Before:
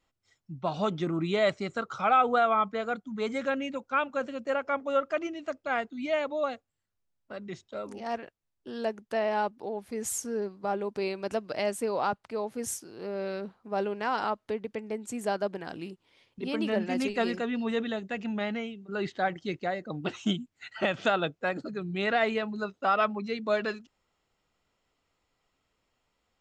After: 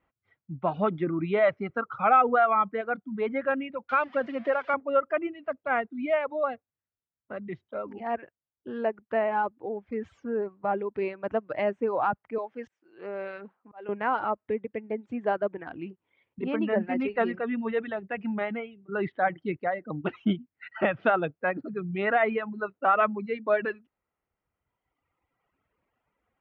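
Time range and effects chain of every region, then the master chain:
3.89–4.74 switching spikes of -22.5 dBFS + three-band squash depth 70%
12.38–13.89 HPF 240 Hz 6 dB/oct + tilt +2 dB/oct + auto swell 0.404 s
whole clip: HPF 50 Hz; reverb removal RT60 1.7 s; inverse Chebyshev low-pass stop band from 11000 Hz, stop band 80 dB; gain +3.5 dB

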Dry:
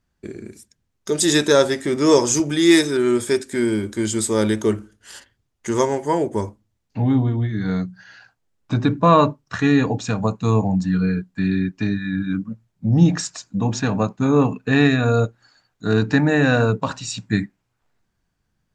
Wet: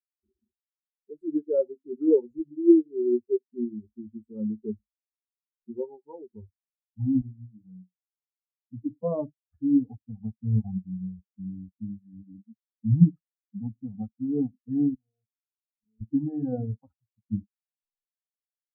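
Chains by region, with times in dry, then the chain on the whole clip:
7.21–8.97 HPF 180 Hz 6 dB/oct + doubler 33 ms -10 dB
14.94–16.01 compressor 4:1, threshold -34 dBFS + doubler 23 ms -10.5 dB
whole clip: per-bin expansion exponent 3; inverse Chebyshev low-pass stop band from 2200 Hz, stop band 70 dB

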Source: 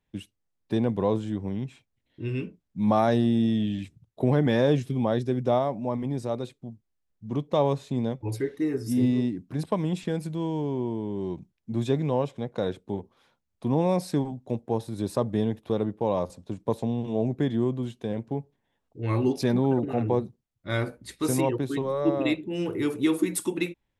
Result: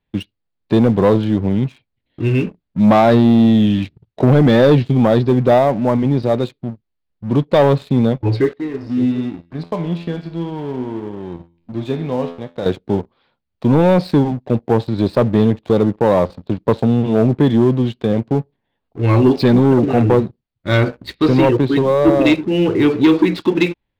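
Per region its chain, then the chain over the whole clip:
8.53–12.66 gate -44 dBFS, range -17 dB + upward compressor, threshold -33 dBFS + resonator 85 Hz, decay 0.64 s, mix 80%
whole clip: Chebyshev low-pass 4600 Hz, order 5; sample leveller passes 2; gain +7 dB

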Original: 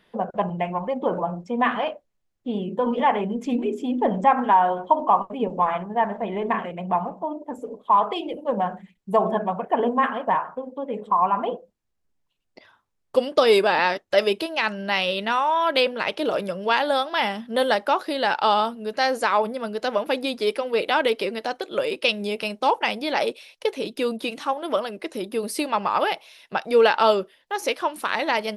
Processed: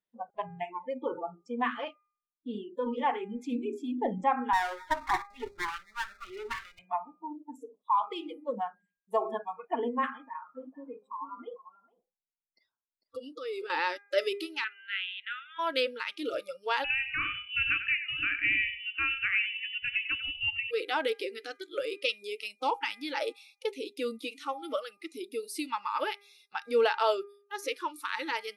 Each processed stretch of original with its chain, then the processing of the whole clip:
4.53–6.79 minimum comb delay 5.1 ms + tone controls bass -7 dB, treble +4 dB + echo 0.262 s -22.5 dB
10.1–13.7 high shelf 3100 Hz -8.5 dB + compressor 5:1, threshold -25 dBFS + echo 0.448 s -8 dB
14.64–15.59 elliptic band-pass 1400–3300 Hz + upward compressor, threshold -36 dBFS
16.84–20.71 inverted band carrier 3200 Hz + feedback echo 95 ms, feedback 30%, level -10.5 dB
whole clip: spectral noise reduction 26 dB; de-hum 404.8 Hz, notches 6; gain -8.5 dB

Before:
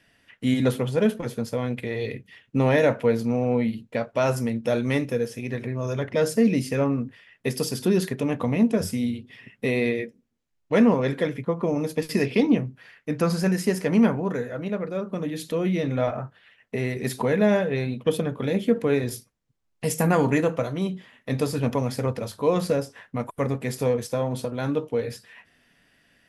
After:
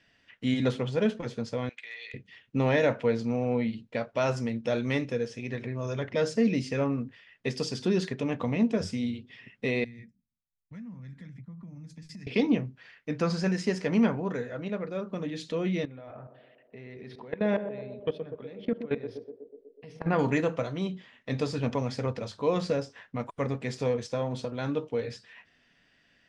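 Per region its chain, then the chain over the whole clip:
1.69–2.14 Chebyshev high-pass 1900 Hz + high shelf 8400 Hz -11 dB + overloaded stage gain 30.5 dB
9.84–12.27 EQ curve 190 Hz 0 dB, 430 Hz -28 dB, 2000 Hz -13 dB, 2900 Hz -20 dB, 7700 Hz -7 dB + compressor, threshold -36 dBFS + three-band expander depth 40%
15.85–20.19 level quantiser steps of 20 dB + running mean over 6 samples + narrowing echo 0.123 s, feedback 72%, band-pass 420 Hz, level -8 dB
whole clip: Bessel low-pass 4400 Hz, order 6; high shelf 3300 Hz +9 dB; gain -5 dB

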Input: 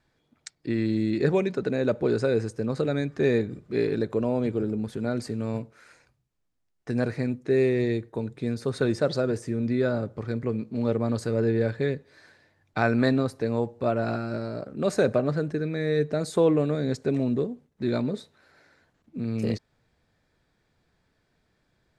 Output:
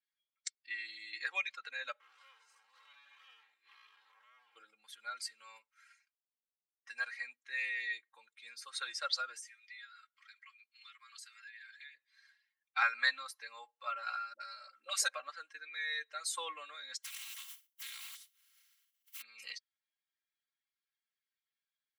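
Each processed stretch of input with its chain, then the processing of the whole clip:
2–4.56 time blur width 0.155 s + compressor 10:1, threshold -31 dBFS + hard clip -37.5 dBFS
9.39–11.95 HPF 1400 Hz 24 dB/oct + compressor 8:1, threshold -43 dBFS
14.33–15.08 high shelf 3000 Hz +5.5 dB + dispersion highs, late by 70 ms, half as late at 480 Hz
17.03–19.2 spectral contrast lowered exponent 0.29 + compressor 4:1, threshold -41 dBFS
whole clip: per-bin expansion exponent 1.5; HPF 1300 Hz 24 dB/oct; comb 3.7 ms, depth 97%; gain +2 dB

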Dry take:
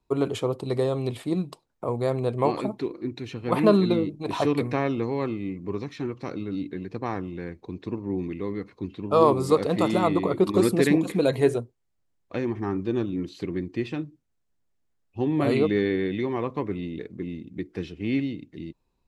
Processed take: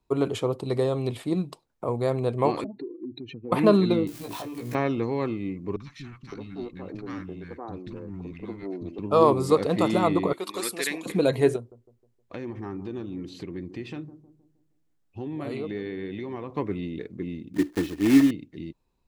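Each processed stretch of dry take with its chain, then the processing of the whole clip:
2.64–3.52 spectral contrast raised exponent 2.2 + HPF 180 Hz + compressor 3:1, threshold -33 dBFS
4.07–4.75 switching spikes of -27 dBFS + compressor 20:1, threshold -33 dBFS + doubler 17 ms -2.5 dB
5.76–8.99 tube stage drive 21 dB, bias 0.5 + three bands offset in time lows, highs, mids 40/560 ms, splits 230/1100 Hz
10.33–11.06 HPF 1300 Hz 6 dB/oct + tilt +1.5 dB/oct
11.56–16.53 compressor 2.5:1, threshold -34 dBFS + analogue delay 0.156 s, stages 1024, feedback 43%, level -14.5 dB
17.54–18.31 block floating point 3-bit + small resonant body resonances 300/1800 Hz, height 13 dB
whole clip: dry

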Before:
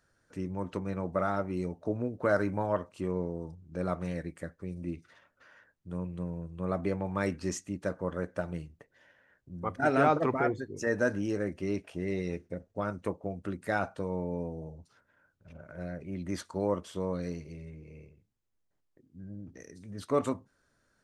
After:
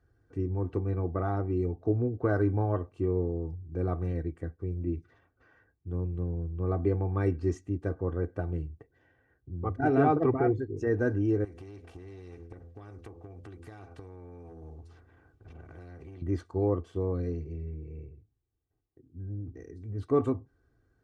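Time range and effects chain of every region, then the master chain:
11.44–16.22 de-hum 84.51 Hz, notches 7 + compressor 5:1, threshold -40 dBFS + spectral compressor 2:1
whole clip: HPF 70 Hz; tilt -4.5 dB/oct; comb 2.6 ms, depth 71%; gain -5 dB

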